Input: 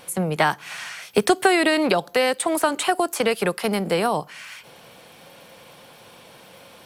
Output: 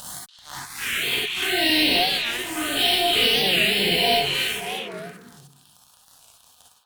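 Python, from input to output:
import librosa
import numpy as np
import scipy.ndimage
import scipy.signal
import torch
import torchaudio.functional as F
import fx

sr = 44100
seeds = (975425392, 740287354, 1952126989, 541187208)

p1 = fx.spec_steps(x, sr, hold_ms=200)
p2 = scipy.signal.sosfilt(scipy.signal.butter(2, 8400.0, 'lowpass', fs=sr, output='sos'), p1)
p3 = fx.peak_eq(p2, sr, hz=3500.0, db=14.0, octaves=1.2)
p4 = fx.auto_swell(p3, sr, attack_ms=683.0)
p5 = fx.tilt_shelf(p4, sr, db=-3.5, hz=1300.0)
p6 = fx.comb_fb(p5, sr, f0_hz=140.0, decay_s=0.54, harmonics='odd', damping=0.0, mix_pct=80)
p7 = fx.fuzz(p6, sr, gain_db=42.0, gate_db=-44.0)
p8 = fx.env_phaser(p7, sr, low_hz=350.0, high_hz=1500.0, full_db=-12.5)
p9 = p8 + fx.echo_stepped(p8, sr, ms=287, hz=3000.0, octaves=-1.4, feedback_pct=70, wet_db=-2, dry=0)
p10 = fx.rev_gated(p9, sr, seeds[0], gate_ms=80, shape='rising', drr_db=-2.5)
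p11 = fx.record_warp(p10, sr, rpm=45.0, depth_cents=160.0)
y = p11 * librosa.db_to_amplitude(-7.0)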